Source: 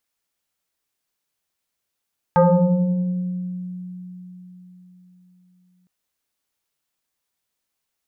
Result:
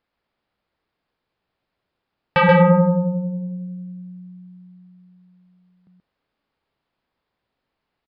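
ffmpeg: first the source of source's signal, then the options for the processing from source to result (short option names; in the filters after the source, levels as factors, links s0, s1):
-f lavfi -i "aevalsrc='0.316*pow(10,-3*t/4.31)*sin(2*PI*181*t+2.6*pow(10,-3*t/1.87)*sin(2*PI*1.94*181*t))':d=3.51:s=44100"
-af "lowpass=f=1000:p=1,aresample=11025,aeval=exprs='0.299*sin(PI/2*2.24*val(0)/0.299)':c=same,aresample=44100,aecho=1:1:130:0.596"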